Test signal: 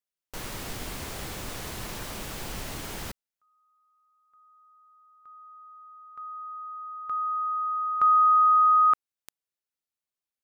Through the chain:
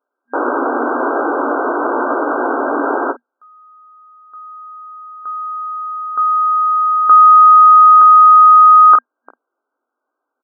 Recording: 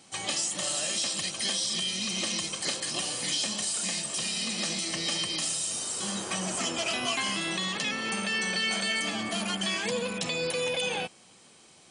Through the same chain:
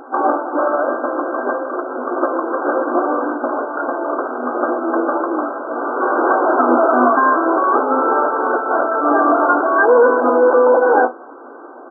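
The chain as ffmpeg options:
ffmpeg -i in.wav -af "aecho=1:1:17|50:0.398|0.15,apsyclip=27.5dB,afftfilt=real='re*between(b*sr/4096,240,1600)':imag='im*between(b*sr/4096,240,1600)':win_size=4096:overlap=0.75,volume=-2.5dB" out.wav

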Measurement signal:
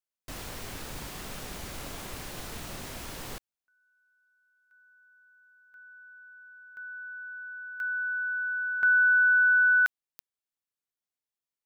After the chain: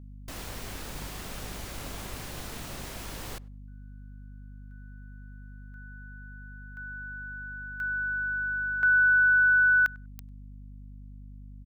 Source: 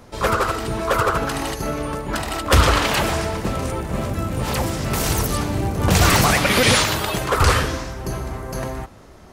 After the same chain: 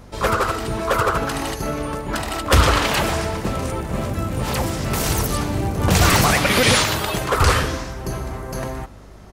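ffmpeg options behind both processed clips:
ffmpeg -i in.wav -filter_complex "[0:a]aeval=exprs='val(0)+0.00631*(sin(2*PI*50*n/s)+sin(2*PI*2*50*n/s)/2+sin(2*PI*3*50*n/s)/3+sin(2*PI*4*50*n/s)/4+sin(2*PI*5*50*n/s)/5)':channel_layout=same,asplit=2[link_01][link_02];[link_02]adelay=98,lowpass=frequency=1800:poles=1,volume=-23dB,asplit=2[link_03][link_04];[link_04]adelay=98,lowpass=frequency=1800:poles=1,volume=0.17[link_05];[link_01][link_03][link_05]amix=inputs=3:normalize=0" out.wav

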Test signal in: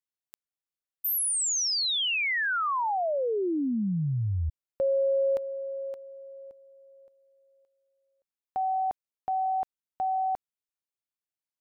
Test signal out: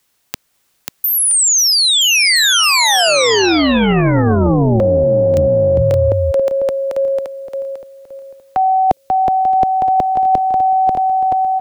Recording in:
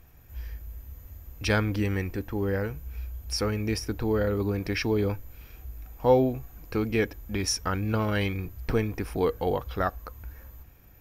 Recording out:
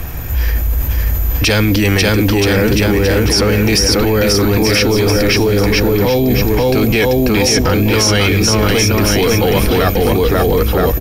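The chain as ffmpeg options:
ffmpeg -i in.wav -filter_complex "[0:a]aecho=1:1:540|972|1318|1594|1815:0.631|0.398|0.251|0.158|0.1,acrossover=split=210|550|2400|7600[link_01][link_02][link_03][link_04][link_05];[link_01]acompressor=threshold=-38dB:ratio=4[link_06];[link_02]acompressor=threshold=-36dB:ratio=4[link_07];[link_03]acompressor=threshold=-48dB:ratio=4[link_08];[link_04]acompressor=threshold=-32dB:ratio=4[link_09];[link_05]acompressor=threshold=-51dB:ratio=4[link_10];[link_06][link_07][link_08][link_09][link_10]amix=inputs=5:normalize=0,apsyclip=32dB,areverse,acompressor=threshold=-18dB:ratio=4:attack=88:release=22:knee=6:detection=peak,areverse,volume=-1dB" out.wav

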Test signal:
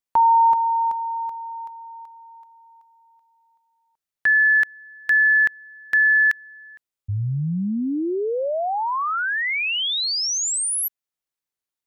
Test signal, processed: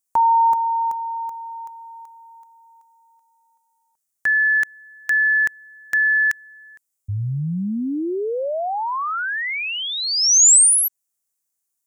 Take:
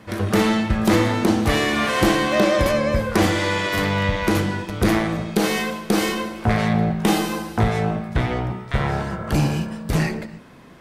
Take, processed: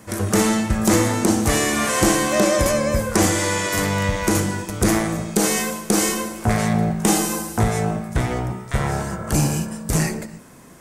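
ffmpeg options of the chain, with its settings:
ffmpeg -i in.wav -filter_complex "[0:a]acrossover=split=9100[link_01][link_02];[link_02]acompressor=threshold=-42dB:ratio=4:attack=1:release=60[link_03];[link_01][link_03]amix=inputs=2:normalize=0,highshelf=frequency=5300:width_type=q:width=1.5:gain=12" out.wav

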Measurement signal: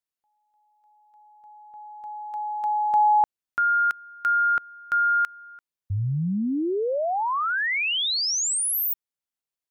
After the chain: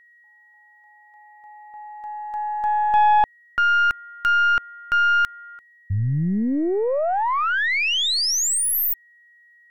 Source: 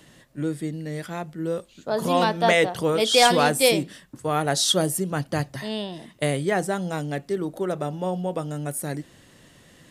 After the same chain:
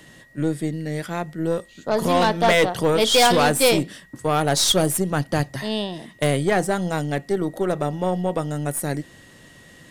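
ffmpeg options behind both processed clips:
ffmpeg -i in.wav -af "aeval=exprs='val(0)+0.00178*sin(2*PI*1900*n/s)':channel_layout=same,aeval=exprs='0.422*(cos(1*acos(clip(val(0)/0.422,-1,1)))-cos(1*PI/2))+0.0266*(cos(4*acos(clip(val(0)/0.422,-1,1)))-cos(4*PI/2))+0.0668*(cos(5*acos(clip(val(0)/0.422,-1,1)))-cos(5*PI/2))+0.0168*(cos(7*acos(clip(val(0)/0.422,-1,1)))-cos(7*PI/2))+0.0188*(cos(8*acos(clip(val(0)/0.422,-1,1)))-cos(8*PI/2))':channel_layout=same" out.wav

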